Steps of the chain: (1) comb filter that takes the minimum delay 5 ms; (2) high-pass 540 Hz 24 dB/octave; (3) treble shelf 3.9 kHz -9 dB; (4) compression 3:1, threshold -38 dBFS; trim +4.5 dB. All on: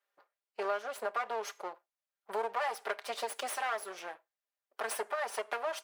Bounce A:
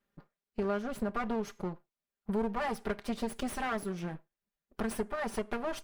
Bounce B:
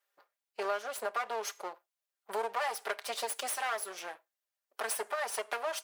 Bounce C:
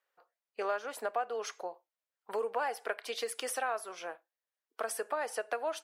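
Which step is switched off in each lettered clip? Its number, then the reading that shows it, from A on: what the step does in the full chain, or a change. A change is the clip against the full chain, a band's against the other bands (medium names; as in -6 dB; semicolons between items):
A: 2, crest factor change -2.0 dB; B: 3, 8 kHz band +5.5 dB; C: 1, 2 kHz band -2.5 dB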